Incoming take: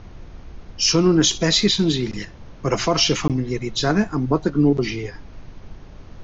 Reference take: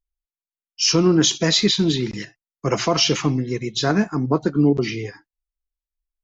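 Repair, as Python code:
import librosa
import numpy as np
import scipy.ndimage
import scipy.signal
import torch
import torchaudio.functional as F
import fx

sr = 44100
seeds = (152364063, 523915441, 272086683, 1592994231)

y = fx.fix_interpolate(x, sr, at_s=(3.28,), length_ms=17.0)
y = fx.noise_reduce(y, sr, print_start_s=5.68, print_end_s=6.18, reduce_db=30.0)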